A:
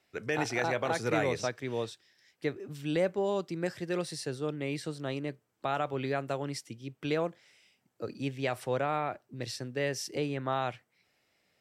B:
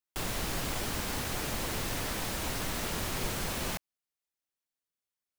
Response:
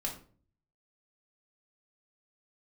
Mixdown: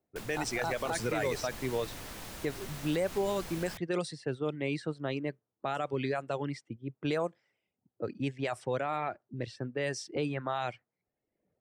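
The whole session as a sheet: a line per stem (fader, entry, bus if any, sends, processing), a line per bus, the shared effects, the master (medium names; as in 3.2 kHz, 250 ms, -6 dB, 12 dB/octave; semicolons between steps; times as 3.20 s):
-3.0 dB, 0.00 s, no send, reverb removal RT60 0.86 s; level-controlled noise filter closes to 600 Hz, open at -26.5 dBFS; peaking EQ 8.6 kHz +10 dB 0.57 oct
-3.5 dB, 0.00 s, no send, auto duck -12 dB, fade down 0.30 s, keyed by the first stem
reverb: none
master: level rider gain up to 6 dB; peak limiter -22 dBFS, peak gain reduction 7.5 dB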